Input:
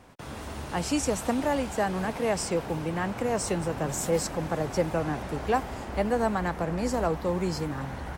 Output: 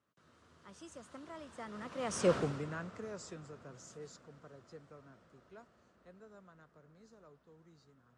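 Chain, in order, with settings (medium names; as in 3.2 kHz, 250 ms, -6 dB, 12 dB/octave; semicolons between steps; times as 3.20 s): Doppler pass-by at 2.33 s, 38 m/s, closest 3.3 m; cabinet simulation 110–8200 Hz, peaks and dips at 300 Hz -3 dB, 810 Hz -10 dB, 1.3 kHz +6 dB, 2.3 kHz -4 dB; trim +2 dB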